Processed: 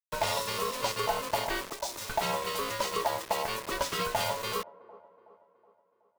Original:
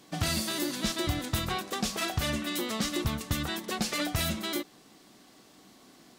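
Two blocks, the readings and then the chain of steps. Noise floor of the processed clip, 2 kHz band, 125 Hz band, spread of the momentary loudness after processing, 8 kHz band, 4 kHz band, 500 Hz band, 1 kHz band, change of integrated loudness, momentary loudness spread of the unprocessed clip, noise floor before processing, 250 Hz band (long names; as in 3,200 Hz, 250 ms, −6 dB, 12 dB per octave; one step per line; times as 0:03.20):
−72 dBFS, 0.0 dB, −10.5 dB, 4 LU, −2.0 dB, −2.5 dB, +4.5 dB, +6.5 dB, −0.5 dB, 3 LU, −58 dBFS, −12.0 dB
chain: gain on a spectral selection 0:01.72–0:02.09, 210–4,100 Hz −12 dB
high-shelf EQ 4,900 Hz −6 dB
ring modulation 770 Hz
bit reduction 7 bits
on a send: delay with a band-pass on its return 372 ms, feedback 50%, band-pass 490 Hz, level −17 dB
on the sum: level +3 dB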